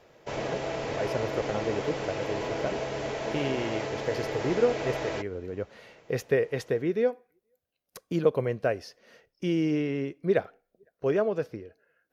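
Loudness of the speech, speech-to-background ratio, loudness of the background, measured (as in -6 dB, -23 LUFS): -30.5 LUFS, 2.5 dB, -33.0 LUFS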